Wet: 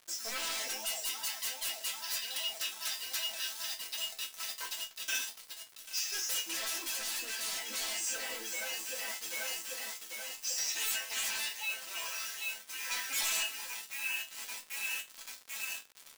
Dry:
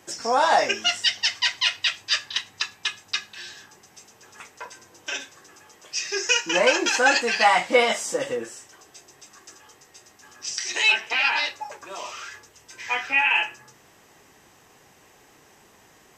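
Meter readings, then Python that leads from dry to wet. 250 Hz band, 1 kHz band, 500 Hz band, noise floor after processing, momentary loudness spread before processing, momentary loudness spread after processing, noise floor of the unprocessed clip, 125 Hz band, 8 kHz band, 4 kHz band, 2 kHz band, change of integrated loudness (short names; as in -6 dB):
-20.5 dB, -21.5 dB, -23.0 dB, -55 dBFS, 19 LU, 7 LU, -55 dBFS, under -20 dB, -2.5 dB, -10.0 dB, -14.5 dB, -13.0 dB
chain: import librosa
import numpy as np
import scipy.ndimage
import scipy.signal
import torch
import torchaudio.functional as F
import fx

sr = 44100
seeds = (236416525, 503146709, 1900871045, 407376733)

y = fx.echo_alternate(x, sr, ms=394, hz=850.0, feedback_pct=83, wet_db=-11.5)
y = 10.0 ** (-22.5 / 20.0) * (np.abs((y / 10.0 ** (-22.5 / 20.0) + 3.0) % 4.0 - 2.0) - 1.0)
y = fx.quant_dither(y, sr, seeds[0], bits=6, dither='none')
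y = fx.high_shelf(y, sr, hz=2900.0, db=10.5)
y = fx.resonator_bank(y, sr, root=57, chord='minor', decay_s=0.22)
y = fx.dmg_crackle(y, sr, seeds[1], per_s=140.0, level_db=-47.0)
y = fx.rider(y, sr, range_db=5, speed_s=2.0)
y = fx.low_shelf(y, sr, hz=350.0, db=-9.0)
y = F.gain(torch.from_numpy(y), 2.5).numpy()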